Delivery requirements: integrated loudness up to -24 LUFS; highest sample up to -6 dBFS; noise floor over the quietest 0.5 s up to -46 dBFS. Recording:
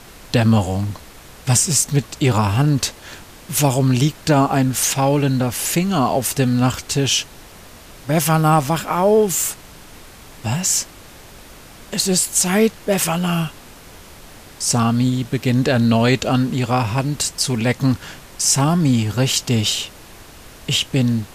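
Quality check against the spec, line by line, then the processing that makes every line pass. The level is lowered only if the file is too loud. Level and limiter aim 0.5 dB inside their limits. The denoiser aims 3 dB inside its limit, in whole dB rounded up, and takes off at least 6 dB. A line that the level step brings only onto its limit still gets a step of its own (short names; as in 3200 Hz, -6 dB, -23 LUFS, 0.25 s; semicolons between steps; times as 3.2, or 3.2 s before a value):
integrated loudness -18.0 LUFS: fail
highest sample -4.0 dBFS: fail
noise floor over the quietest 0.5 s -41 dBFS: fail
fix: gain -6.5 dB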